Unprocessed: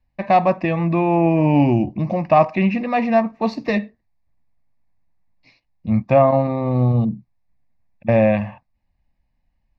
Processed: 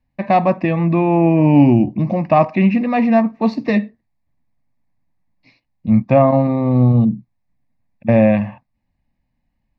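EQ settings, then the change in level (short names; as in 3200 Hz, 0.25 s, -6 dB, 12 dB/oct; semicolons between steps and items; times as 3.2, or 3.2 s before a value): graphic EQ 125/250/500/1000/2000/4000 Hz +6/+9/+3/+3/+4/+3 dB; -4.0 dB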